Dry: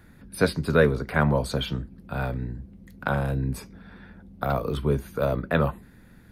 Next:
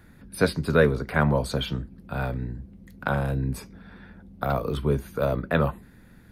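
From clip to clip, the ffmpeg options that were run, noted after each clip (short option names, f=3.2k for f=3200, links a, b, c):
-af anull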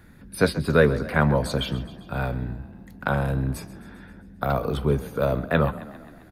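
-filter_complex "[0:a]asplit=7[a][b][c][d][e][f][g];[b]adelay=133,afreqshift=31,volume=-17dB[h];[c]adelay=266,afreqshift=62,volume=-21.4dB[i];[d]adelay=399,afreqshift=93,volume=-25.9dB[j];[e]adelay=532,afreqshift=124,volume=-30.3dB[k];[f]adelay=665,afreqshift=155,volume=-34.7dB[l];[g]adelay=798,afreqshift=186,volume=-39.2dB[m];[a][h][i][j][k][l][m]amix=inputs=7:normalize=0,volume=1.5dB"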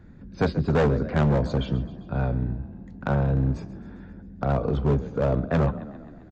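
-af "tiltshelf=f=970:g=7,aresample=16000,asoftclip=type=hard:threshold=-13dB,aresample=44100,volume=-3.5dB"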